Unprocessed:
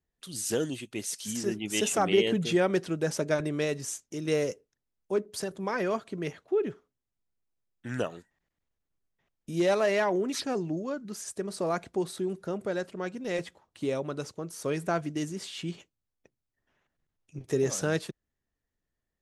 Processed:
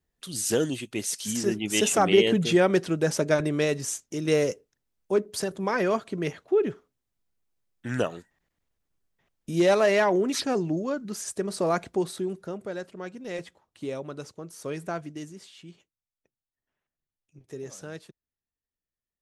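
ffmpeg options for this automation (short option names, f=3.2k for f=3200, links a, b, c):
-af "volume=4.5dB,afade=t=out:st=11.83:d=0.77:silence=0.421697,afade=t=out:st=14.84:d=0.77:silence=0.375837"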